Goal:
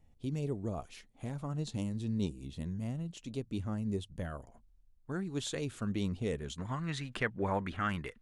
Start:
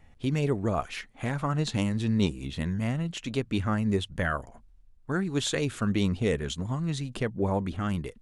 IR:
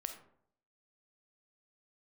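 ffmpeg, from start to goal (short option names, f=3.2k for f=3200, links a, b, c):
-af "asetnsamples=n=441:p=0,asendcmd='4.4 equalizer g -4;6.58 equalizer g 13',equalizer=f=1.7k:t=o:w=1.8:g=-12,volume=-8dB"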